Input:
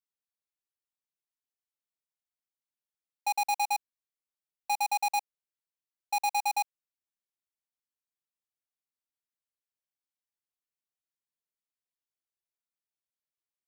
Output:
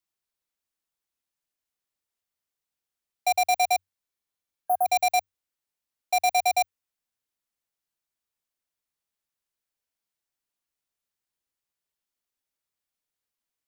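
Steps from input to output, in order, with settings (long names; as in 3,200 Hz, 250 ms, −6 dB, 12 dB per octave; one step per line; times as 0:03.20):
frequency shifter −94 Hz
healed spectral selection 0:04.12–0:04.84, 1,600–9,800 Hz before
level +6 dB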